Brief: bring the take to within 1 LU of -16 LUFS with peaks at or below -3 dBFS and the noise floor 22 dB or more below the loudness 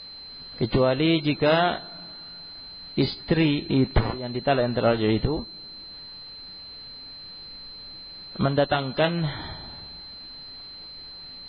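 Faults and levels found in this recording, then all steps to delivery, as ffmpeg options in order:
steady tone 4.1 kHz; tone level -39 dBFS; loudness -24.0 LUFS; peak level -9.5 dBFS; loudness target -16.0 LUFS
-> -af "bandreject=f=4100:w=30"
-af "volume=2.51,alimiter=limit=0.708:level=0:latency=1"

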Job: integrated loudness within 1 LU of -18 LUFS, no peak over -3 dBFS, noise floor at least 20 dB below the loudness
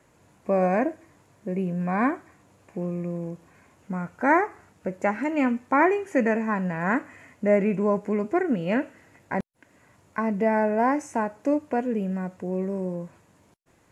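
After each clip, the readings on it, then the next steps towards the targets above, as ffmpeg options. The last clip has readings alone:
loudness -26.0 LUFS; peak level -7.5 dBFS; loudness target -18.0 LUFS
-> -af "volume=2.51,alimiter=limit=0.708:level=0:latency=1"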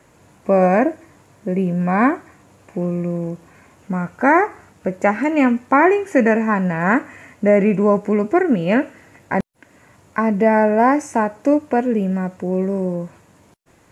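loudness -18.0 LUFS; peak level -3.0 dBFS; noise floor -53 dBFS

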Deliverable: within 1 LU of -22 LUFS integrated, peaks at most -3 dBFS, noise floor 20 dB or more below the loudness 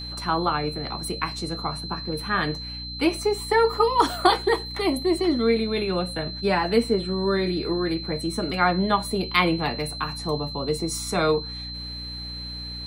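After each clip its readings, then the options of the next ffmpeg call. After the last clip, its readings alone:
hum 60 Hz; highest harmonic 300 Hz; hum level -35 dBFS; steady tone 4.1 kHz; tone level -34 dBFS; loudness -24.5 LUFS; peak level -4.0 dBFS; loudness target -22.0 LUFS
-> -af "bandreject=f=60:t=h:w=6,bandreject=f=120:t=h:w=6,bandreject=f=180:t=h:w=6,bandreject=f=240:t=h:w=6,bandreject=f=300:t=h:w=6"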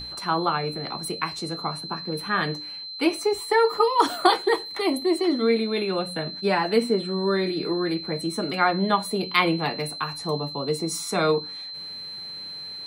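hum not found; steady tone 4.1 kHz; tone level -34 dBFS
-> -af "bandreject=f=4100:w=30"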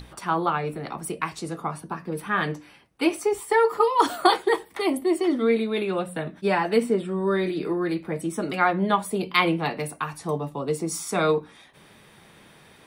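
steady tone not found; loudness -25.0 LUFS; peak level -4.5 dBFS; loudness target -22.0 LUFS
-> -af "volume=1.41,alimiter=limit=0.708:level=0:latency=1"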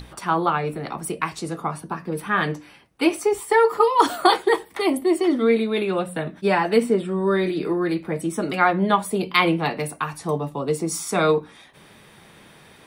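loudness -22.0 LUFS; peak level -3.0 dBFS; noise floor -50 dBFS

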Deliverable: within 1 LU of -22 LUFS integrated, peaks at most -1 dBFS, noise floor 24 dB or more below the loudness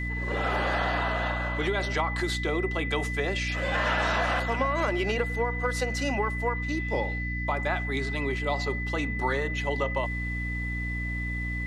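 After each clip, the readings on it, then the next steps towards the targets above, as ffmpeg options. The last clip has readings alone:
hum 60 Hz; highest harmonic 300 Hz; hum level -30 dBFS; steady tone 2 kHz; tone level -33 dBFS; loudness -28.0 LUFS; peak level -14.0 dBFS; loudness target -22.0 LUFS
-> -af "bandreject=f=60:t=h:w=6,bandreject=f=120:t=h:w=6,bandreject=f=180:t=h:w=6,bandreject=f=240:t=h:w=6,bandreject=f=300:t=h:w=6"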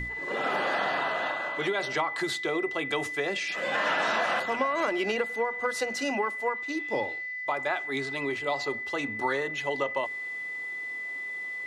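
hum not found; steady tone 2 kHz; tone level -33 dBFS
-> -af "bandreject=f=2000:w=30"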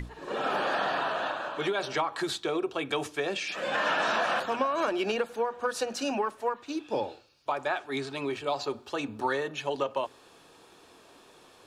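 steady tone not found; loudness -30.5 LUFS; peak level -15.0 dBFS; loudness target -22.0 LUFS
-> -af "volume=2.66"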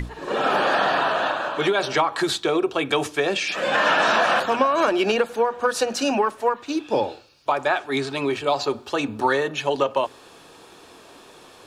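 loudness -22.0 LUFS; peak level -6.5 dBFS; noise floor -48 dBFS

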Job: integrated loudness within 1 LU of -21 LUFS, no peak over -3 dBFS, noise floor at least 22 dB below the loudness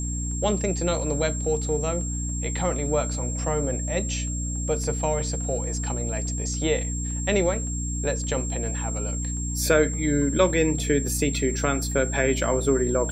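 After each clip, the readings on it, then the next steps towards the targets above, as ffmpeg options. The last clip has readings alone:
hum 60 Hz; highest harmonic 300 Hz; hum level -27 dBFS; steady tone 7.5 kHz; tone level -32 dBFS; loudness -25.0 LUFS; peak level -6.0 dBFS; loudness target -21.0 LUFS
-> -af "bandreject=f=60:t=h:w=6,bandreject=f=120:t=h:w=6,bandreject=f=180:t=h:w=6,bandreject=f=240:t=h:w=6,bandreject=f=300:t=h:w=6"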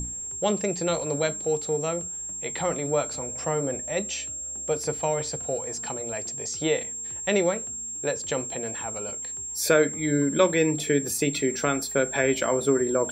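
hum not found; steady tone 7.5 kHz; tone level -32 dBFS
-> -af "bandreject=f=7500:w=30"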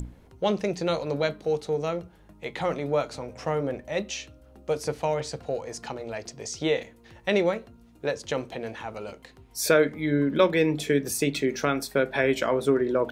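steady tone not found; loudness -27.5 LUFS; peak level -7.0 dBFS; loudness target -21.0 LUFS
-> -af "volume=2.11,alimiter=limit=0.708:level=0:latency=1"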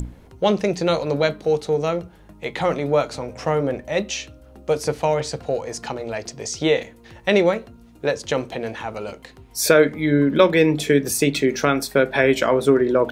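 loudness -21.0 LUFS; peak level -3.0 dBFS; noise floor -48 dBFS

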